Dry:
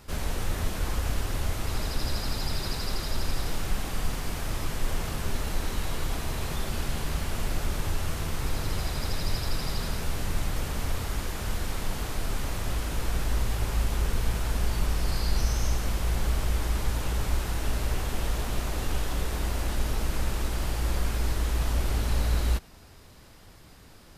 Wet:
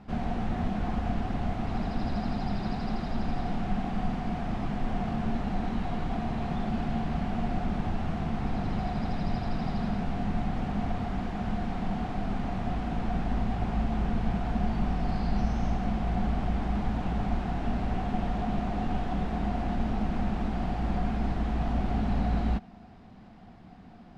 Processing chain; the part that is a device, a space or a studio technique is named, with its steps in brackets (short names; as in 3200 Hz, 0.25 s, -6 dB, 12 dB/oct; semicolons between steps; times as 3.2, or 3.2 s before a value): inside a cardboard box (LPF 2800 Hz 12 dB/oct; small resonant body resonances 210/720 Hz, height 17 dB, ringing for 45 ms); gain -4.5 dB